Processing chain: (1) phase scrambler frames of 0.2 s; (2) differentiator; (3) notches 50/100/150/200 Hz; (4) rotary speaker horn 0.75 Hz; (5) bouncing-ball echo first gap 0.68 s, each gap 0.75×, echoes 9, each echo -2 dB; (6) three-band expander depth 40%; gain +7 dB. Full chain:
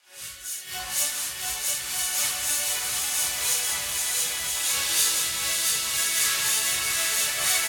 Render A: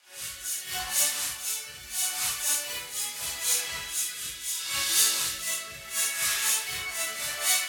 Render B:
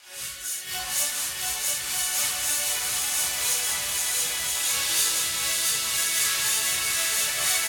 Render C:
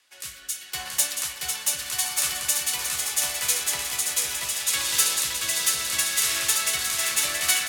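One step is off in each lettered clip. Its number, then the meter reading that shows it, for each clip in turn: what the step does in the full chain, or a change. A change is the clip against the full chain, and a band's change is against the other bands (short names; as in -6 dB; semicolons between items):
5, crest factor change +3.5 dB; 6, crest factor change -2.5 dB; 1, crest factor change +4.0 dB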